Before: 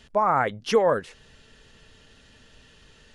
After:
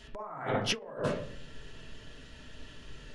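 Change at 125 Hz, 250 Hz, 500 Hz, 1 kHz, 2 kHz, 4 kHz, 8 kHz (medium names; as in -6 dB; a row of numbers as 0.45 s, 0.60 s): -1.0 dB, -5.5 dB, -12.5 dB, -15.0 dB, -7.0 dB, +0.5 dB, -0.5 dB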